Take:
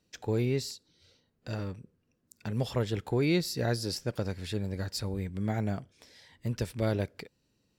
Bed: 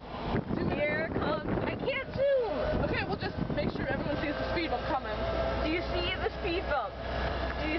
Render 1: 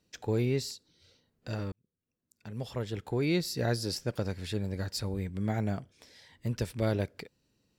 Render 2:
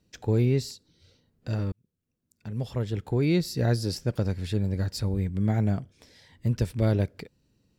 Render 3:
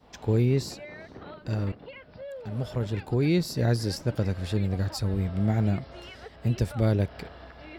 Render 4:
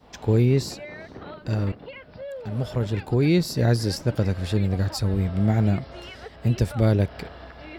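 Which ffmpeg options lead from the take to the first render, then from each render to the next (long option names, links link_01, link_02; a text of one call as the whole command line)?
ffmpeg -i in.wav -filter_complex "[0:a]asplit=2[link_01][link_02];[link_01]atrim=end=1.72,asetpts=PTS-STARTPTS,afade=type=out:start_time=1.716:duration=0.004:curve=hsin[link_03];[link_02]atrim=start=1.72,asetpts=PTS-STARTPTS,afade=type=in:duration=1.94[link_04];[link_03][link_04]concat=n=2:v=0:a=1" out.wav
ffmpeg -i in.wav -af "lowshelf=frequency=300:gain=9" out.wav
ffmpeg -i in.wav -i bed.wav -filter_complex "[1:a]volume=-13dB[link_01];[0:a][link_01]amix=inputs=2:normalize=0" out.wav
ffmpeg -i in.wav -af "volume=4dB" out.wav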